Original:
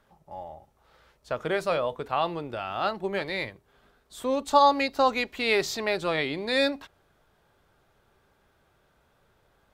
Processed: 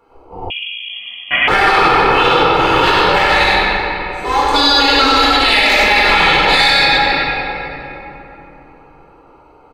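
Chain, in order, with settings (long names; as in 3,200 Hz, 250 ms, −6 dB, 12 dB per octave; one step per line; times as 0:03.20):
adaptive Wiener filter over 25 samples
gate on every frequency bin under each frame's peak −10 dB weak
parametric band 140 Hz −6 dB 2 octaves
comb filter 2.3 ms, depth 61%
on a send: single-tap delay 94 ms −4.5 dB
on the sum: rectangular room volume 200 cubic metres, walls hard, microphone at 1.7 metres
0:00.50–0:01.48: voice inversion scrambler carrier 3,300 Hz
boost into a limiter +17.5 dB
level −1 dB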